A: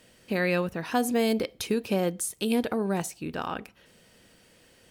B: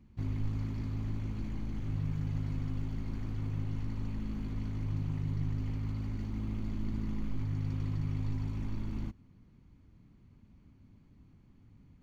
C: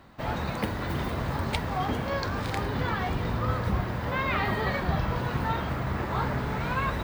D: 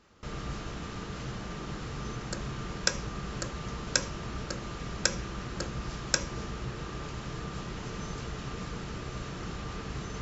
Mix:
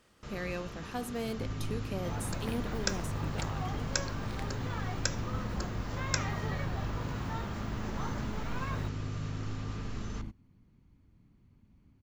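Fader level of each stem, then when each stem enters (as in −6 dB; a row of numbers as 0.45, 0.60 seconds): −12.0, −3.5, −11.0, −5.5 decibels; 0.00, 1.20, 1.85, 0.00 seconds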